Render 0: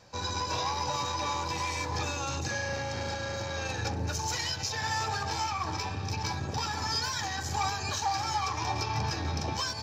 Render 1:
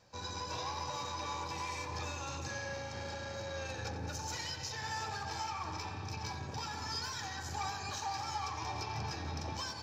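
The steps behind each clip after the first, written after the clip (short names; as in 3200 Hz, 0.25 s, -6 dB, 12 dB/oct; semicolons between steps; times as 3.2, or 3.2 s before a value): tape echo 88 ms, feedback 86%, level -9 dB, low-pass 4200 Hz; gain -8.5 dB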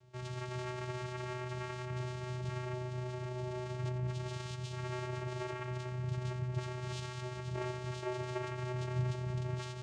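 vocoder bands 4, square 125 Hz; gain +2.5 dB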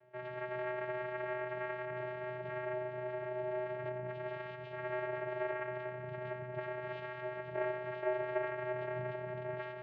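speaker cabinet 290–2300 Hz, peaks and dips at 340 Hz -3 dB, 600 Hz +8 dB, 1200 Hz -6 dB, 1700 Hz +6 dB; gain +2.5 dB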